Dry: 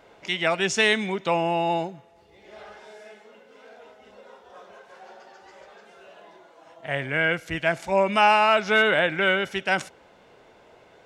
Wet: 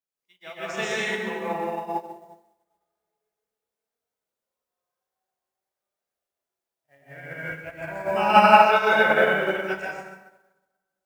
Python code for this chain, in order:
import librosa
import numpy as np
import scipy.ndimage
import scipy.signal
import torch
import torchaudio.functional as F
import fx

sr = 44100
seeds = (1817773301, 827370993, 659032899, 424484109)

p1 = fx.quant_dither(x, sr, seeds[0], bits=6, dither='triangular')
p2 = x + (p1 * librosa.db_to_amplitude(-3.5))
p3 = fx.noise_reduce_blind(p2, sr, reduce_db=9)
p4 = p3 + fx.room_early_taps(p3, sr, ms=(32, 61), db=(-8.0, -13.0), dry=0)
p5 = fx.rev_plate(p4, sr, seeds[1], rt60_s=2.6, hf_ratio=0.45, predelay_ms=110, drr_db=-7.5)
p6 = fx.upward_expand(p5, sr, threshold_db=-31.0, expansion=2.5)
y = p6 * librosa.db_to_amplitude(-6.0)